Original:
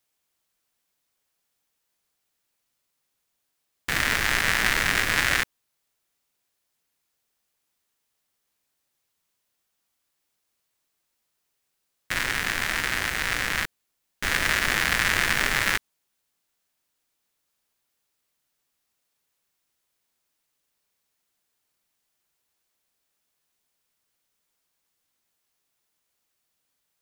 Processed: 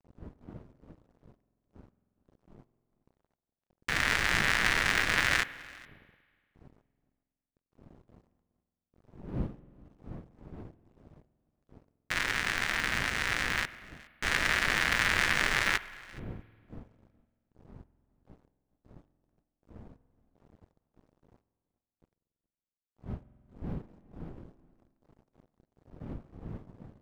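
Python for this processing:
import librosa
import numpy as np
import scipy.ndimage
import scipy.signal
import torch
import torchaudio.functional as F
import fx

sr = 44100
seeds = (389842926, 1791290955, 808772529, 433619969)

y = fx.dmg_wind(x, sr, seeds[0], corner_hz=210.0, level_db=-43.0)
y = np.sign(y) * np.maximum(np.abs(y) - 10.0 ** (-46.5 / 20.0), 0.0)
y = y + 10.0 ** (-23.5 / 20.0) * np.pad(y, (int(418 * sr / 1000.0), 0))[:len(y)]
y = fx.rev_spring(y, sr, rt60_s=1.8, pass_ms=(46,), chirp_ms=65, drr_db=16.5)
y = np.interp(np.arange(len(y)), np.arange(len(y))[::3], y[::3])
y = y * librosa.db_to_amplitude(-3.5)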